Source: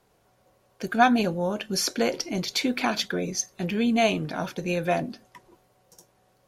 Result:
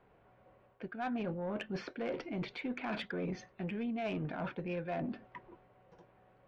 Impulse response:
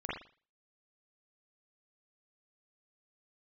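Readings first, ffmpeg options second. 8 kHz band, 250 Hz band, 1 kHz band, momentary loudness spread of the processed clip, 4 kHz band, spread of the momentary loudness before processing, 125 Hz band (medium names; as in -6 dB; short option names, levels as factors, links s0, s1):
under -30 dB, -12.0 dB, -16.0 dB, 6 LU, -20.0 dB, 9 LU, -9.0 dB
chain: -af "lowpass=f=2600:w=0.5412,lowpass=f=2600:w=1.3066,areverse,acompressor=threshold=0.0224:ratio=10,areverse,asoftclip=type=tanh:threshold=0.0355"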